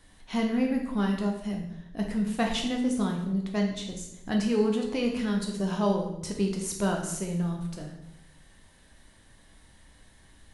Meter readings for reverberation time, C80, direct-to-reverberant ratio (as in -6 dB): 0.85 s, 8.5 dB, 1.0 dB